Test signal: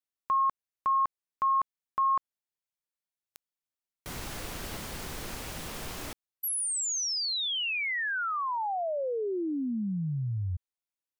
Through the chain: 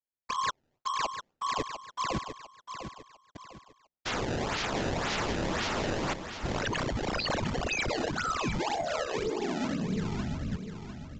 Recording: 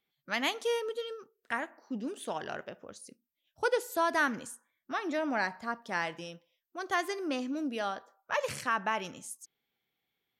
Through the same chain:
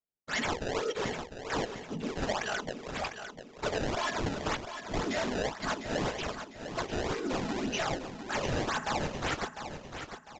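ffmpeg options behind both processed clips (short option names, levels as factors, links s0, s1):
-filter_complex "[0:a]agate=range=0.0224:threshold=0.00447:ratio=3:release=189:detection=rms,highshelf=f=5400:g=9,aeval=exprs='0.188*(cos(1*acos(clip(val(0)/0.188,-1,1)))-cos(1*PI/2))+0.0841*(cos(5*acos(clip(val(0)/0.188,-1,1)))-cos(5*PI/2))':c=same,tiltshelf=f=720:g=-5.5,areverse,acompressor=threshold=0.0398:ratio=8:attack=79:release=55:knee=1:detection=peak,areverse,afftfilt=real='hypot(re,im)*cos(2*PI*random(0))':imag='hypot(re,im)*sin(2*PI*random(1))':win_size=512:overlap=0.75,asoftclip=type=hard:threshold=0.0422,aecho=1:1:4.7:0.37,acrusher=samples=23:mix=1:aa=0.000001:lfo=1:lforange=36.8:lforate=1.9,asplit=2[s0][s1];[s1]aecho=0:1:701|1402|2103|2804:0.355|0.131|0.0486|0.018[s2];[s0][s2]amix=inputs=2:normalize=0,aresample=16000,aresample=44100"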